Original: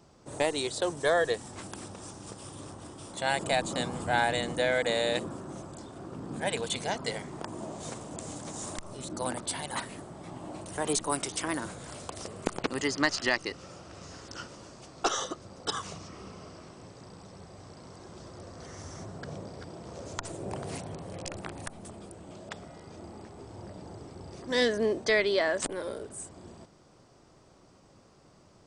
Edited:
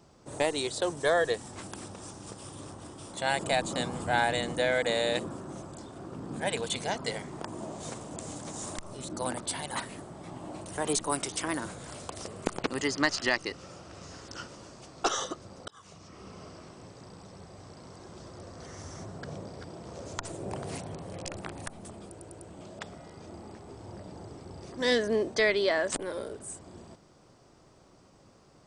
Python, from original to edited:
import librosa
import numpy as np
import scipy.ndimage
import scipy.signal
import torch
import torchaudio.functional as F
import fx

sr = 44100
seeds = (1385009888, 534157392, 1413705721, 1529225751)

y = fx.edit(x, sr, fx.fade_in_span(start_s=15.68, length_s=0.73),
    fx.stutter(start_s=22.09, slice_s=0.1, count=4), tone=tone)